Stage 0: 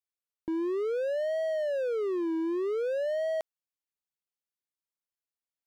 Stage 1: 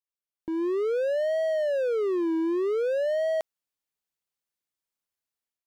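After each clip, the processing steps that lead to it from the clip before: AGC gain up to 10 dB; gain -6 dB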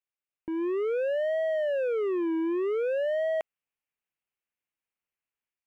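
resonant high shelf 3300 Hz -7.5 dB, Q 3; gain -2 dB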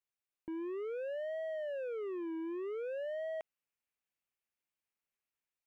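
limiter -32 dBFS, peak gain reduction 9 dB; gain -2.5 dB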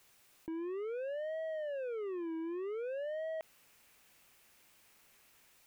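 fast leveller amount 50%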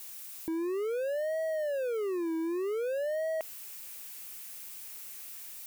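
switching spikes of -47 dBFS; gain +7 dB

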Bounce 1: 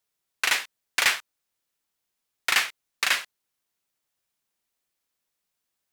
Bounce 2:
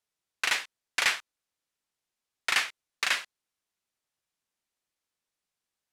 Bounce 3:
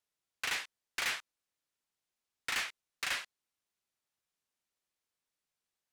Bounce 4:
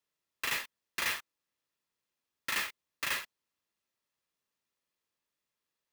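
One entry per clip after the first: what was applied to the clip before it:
Bessel low-pass 9600 Hz, order 2; gain -3.5 dB
soft clip -26 dBFS, distortion -8 dB; gain -3 dB
notch comb 750 Hz; clock jitter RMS 0.026 ms; gain +3 dB

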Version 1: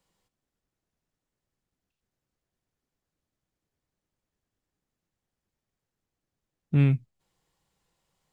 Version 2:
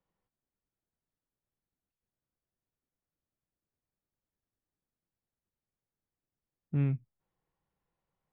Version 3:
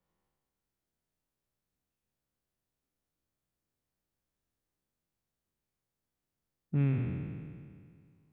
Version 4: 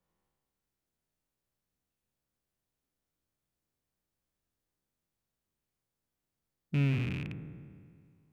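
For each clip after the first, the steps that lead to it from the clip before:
LPF 1900 Hz 12 dB/oct; gain -8 dB
spectral trails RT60 2.09 s
rattling part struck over -35 dBFS, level -30 dBFS

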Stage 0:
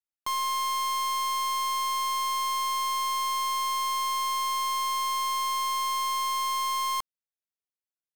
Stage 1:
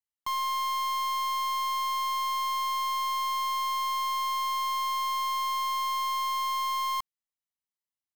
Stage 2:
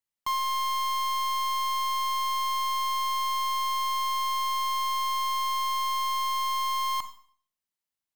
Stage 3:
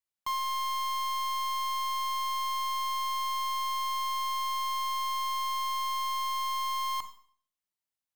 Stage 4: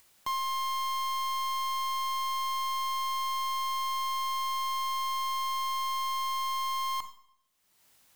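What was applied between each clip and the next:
comb 1 ms, depth 65%; gain -5 dB
Schroeder reverb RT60 0.5 s, combs from 31 ms, DRR 9.5 dB; gain +2.5 dB
notches 60/120/180/240/300/360/420/480 Hz; gain -3.5 dB
upward compressor, threshold -40 dBFS

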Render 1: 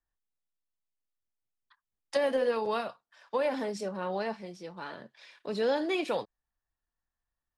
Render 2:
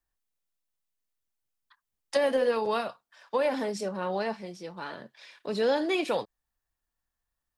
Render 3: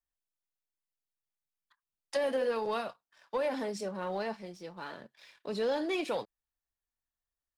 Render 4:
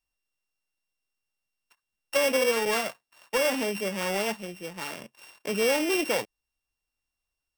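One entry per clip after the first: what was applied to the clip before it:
high shelf 7100 Hz +4 dB; gain +2.5 dB
sample leveller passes 1; gain -8 dB
sample sorter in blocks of 16 samples; gain +6.5 dB

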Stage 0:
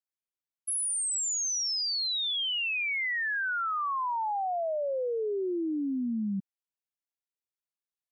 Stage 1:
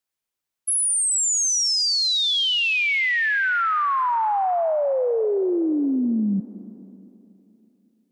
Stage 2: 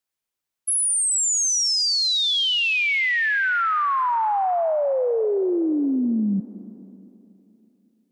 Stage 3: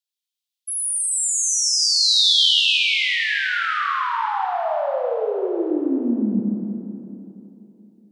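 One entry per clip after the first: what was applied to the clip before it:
reverb RT60 3.2 s, pre-delay 0.164 s, DRR 16 dB; gain +9 dB
nothing audible
high-pass sweep 3500 Hz -> 110 Hz, 2.36–3.62; Schroeder reverb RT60 3.2 s, combs from 26 ms, DRR -2.5 dB; gain -6 dB

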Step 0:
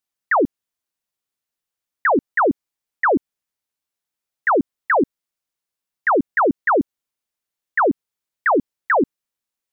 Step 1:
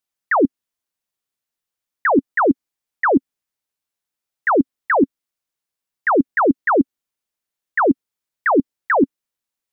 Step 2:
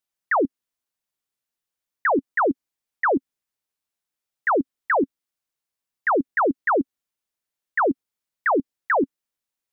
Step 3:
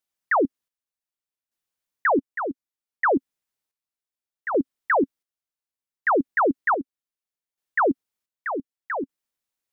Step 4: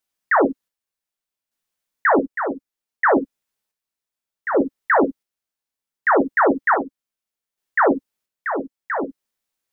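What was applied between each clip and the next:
dynamic EQ 270 Hz, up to +6 dB, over -33 dBFS, Q 2.5
limiter -13.5 dBFS, peak gain reduction 7 dB; gain -2 dB
chopper 0.66 Hz, depth 60%, duty 45%
reverb, pre-delay 4 ms, DRR 5 dB; gain +3.5 dB

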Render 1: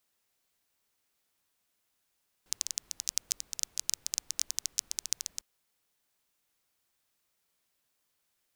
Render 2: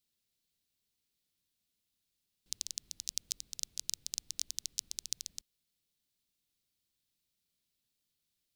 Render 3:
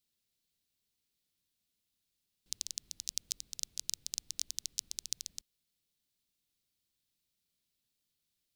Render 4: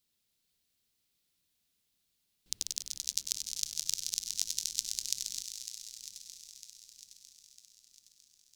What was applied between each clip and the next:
EQ curve 200 Hz 0 dB, 930 Hz -17 dB, 1600 Hz -14 dB, 4000 Hz -1 dB, 6300 Hz -6 dB
nothing audible
regenerating reverse delay 0.476 s, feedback 67%, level -12 dB; thinning echo 98 ms, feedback 83%, high-pass 360 Hz, level -10 dB; gain +3.5 dB

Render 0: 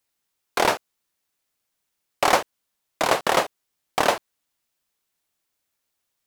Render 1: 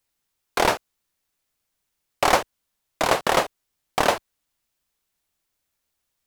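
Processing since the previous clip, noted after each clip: low shelf 83 Hz +11.5 dB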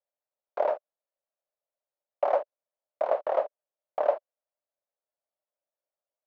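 ladder band-pass 630 Hz, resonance 75%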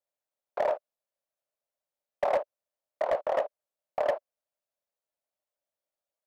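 overloaded stage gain 20 dB

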